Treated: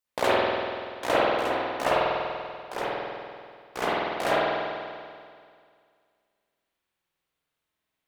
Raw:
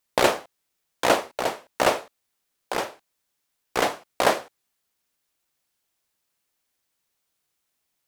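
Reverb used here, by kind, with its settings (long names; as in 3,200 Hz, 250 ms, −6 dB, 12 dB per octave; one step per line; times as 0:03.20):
spring reverb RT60 2.1 s, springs 48 ms, chirp 25 ms, DRR −10 dB
level −11 dB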